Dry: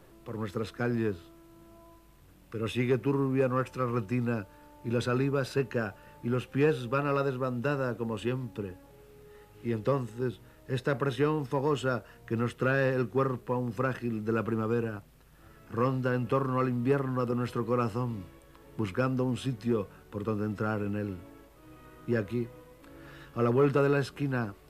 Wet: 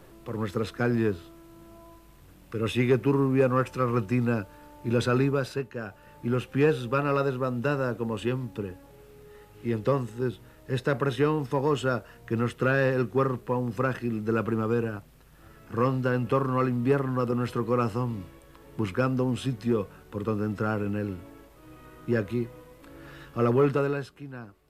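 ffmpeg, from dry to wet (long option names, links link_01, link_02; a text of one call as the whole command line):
ffmpeg -i in.wav -af "volume=14.5dB,afade=type=out:start_time=5.24:duration=0.47:silence=0.266073,afade=type=in:start_time=5.71:duration=0.55:silence=0.316228,afade=type=out:start_time=23.56:duration=0.58:silence=0.223872" out.wav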